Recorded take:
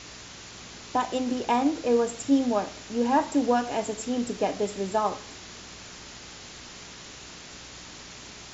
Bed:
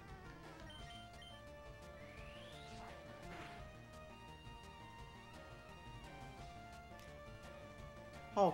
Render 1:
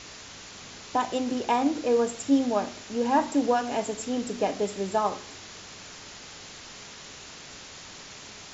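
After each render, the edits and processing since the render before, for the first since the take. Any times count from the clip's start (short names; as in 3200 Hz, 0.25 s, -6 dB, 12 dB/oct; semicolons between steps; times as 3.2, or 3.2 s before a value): de-hum 60 Hz, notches 6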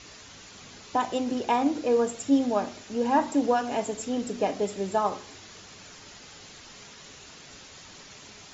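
denoiser 6 dB, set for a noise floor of -45 dBFS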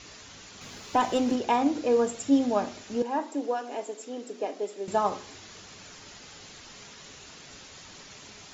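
0.61–1.36 sample leveller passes 1; 3.02–4.88 ladder high-pass 270 Hz, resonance 35%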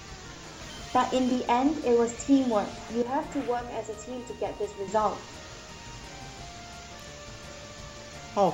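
add bed +9.5 dB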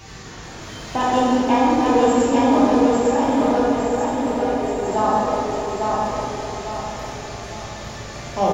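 feedback echo 0.853 s, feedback 42%, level -3 dB; plate-style reverb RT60 2.8 s, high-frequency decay 0.4×, DRR -7 dB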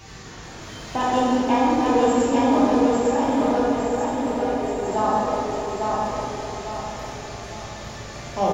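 gain -2.5 dB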